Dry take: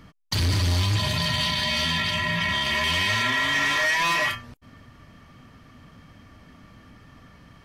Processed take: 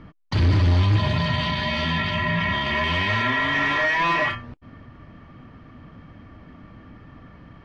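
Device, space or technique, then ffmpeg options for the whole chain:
phone in a pocket: -af "lowpass=3400,equalizer=f=320:t=o:w=0.21:g=4,highshelf=f=2100:g=-8.5,volume=1.78"

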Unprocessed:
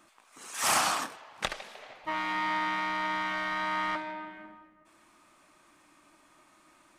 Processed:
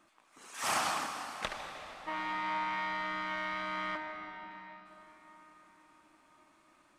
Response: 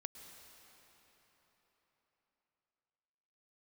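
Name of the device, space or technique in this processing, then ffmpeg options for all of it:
swimming-pool hall: -filter_complex "[1:a]atrim=start_sample=2205[s0];[0:a][s0]afir=irnorm=-1:irlink=0,highshelf=f=5700:g=-6.5,asettb=1/sr,asplit=3[s1][s2][s3];[s1]atrim=end=3.974[s4];[s2]atrim=start=3.97:end=4.51,asetpts=PTS-STARTPTS,afade=t=in:d=0.004:c=qsin,afade=t=out:st=0.536:d=0.004:c=qsin,highshelf=f=4700:g=-6[s5];[s3]atrim=start=4.506[s6];[s4][s5]acrossfade=d=0.004:c1=hsin:c2=qsin[s7];[s7][s6]acrossfade=d=0.004:c1=qsin:c2=hsin"

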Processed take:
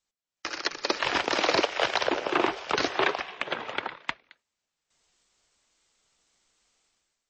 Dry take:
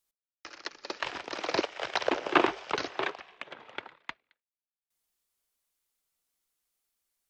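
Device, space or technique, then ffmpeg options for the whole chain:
low-bitrate web radio: -af "dynaudnorm=f=120:g=7:m=5.01,alimiter=limit=0.237:level=0:latency=1:release=68,volume=1.19" -ar 22050 -c:a libmp3lame -b:a 32k

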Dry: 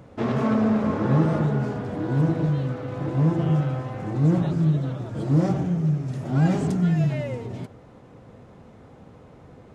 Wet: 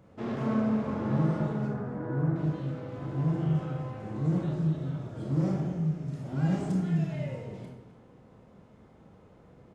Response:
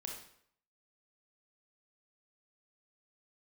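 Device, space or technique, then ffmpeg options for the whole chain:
bathroom: -filter_complex "[0:a]asettb=1/sr,asplit=3[s0][s1][s2];[s0]atrim=end=1.674[s3];[s1]atrim=start=1.67:end=2.36,asetpts=PTS-STARTPTS,afade=t=in:d=0.004:c=qsin,afade=t=out:st=0.686:d=0.004:c=qsin,highshelf=f=2300:t=q:w=1.5:g=-12[s4];[s2]atrim=start=2.356[s5];[s3][s4]acrossfade=d=0.004:c1=hsin:c2=qsin[s6];[s6][s5]acrossfade=d=0.004:c1=qsin:c2=hsin,asplit=2[s7][s8];[s8]adelay=256.6,volume=0.224,highshelf=f=4000:g=-5.77[s9];[s7][s9]amix=inputs=2:normalize=0[s10];[1:a]atrim=start_sample=2205[s11];[s10][s11]afir=irnorm=-1:irlink=0,volume=0.473"

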